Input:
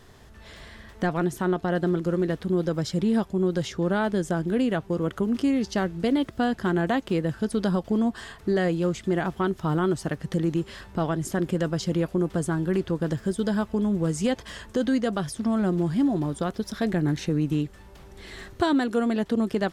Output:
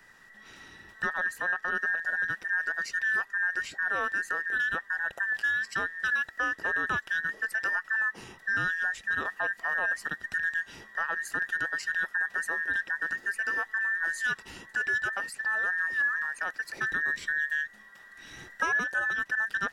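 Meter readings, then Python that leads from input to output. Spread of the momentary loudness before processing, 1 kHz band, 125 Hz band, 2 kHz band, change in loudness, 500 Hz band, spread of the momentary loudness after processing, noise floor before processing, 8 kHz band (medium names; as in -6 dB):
5 LU, -3.5 dB, -24.5 dB, +12.0 dB, -3.0 dB, -18.5 dB, 5 LU, -49 dBFS, -5.0 dB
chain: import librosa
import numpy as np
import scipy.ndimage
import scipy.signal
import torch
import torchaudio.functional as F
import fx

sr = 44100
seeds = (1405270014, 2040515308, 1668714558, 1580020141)

y = fx.band_invert(x, sr, width_hz=2000)
y = F.gain(torch.from_numpy(y), -5.5).numpy()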